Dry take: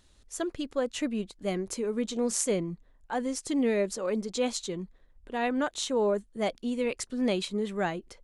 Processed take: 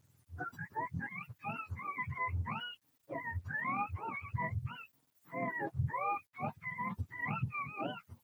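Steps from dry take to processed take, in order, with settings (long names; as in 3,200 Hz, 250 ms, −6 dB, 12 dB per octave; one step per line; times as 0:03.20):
frequency axis turned over on the octave scale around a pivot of 700 Hz
bit reduction 11 bits
highs frequency-modulated by the lows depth 0.16 ms
level −7.5 dB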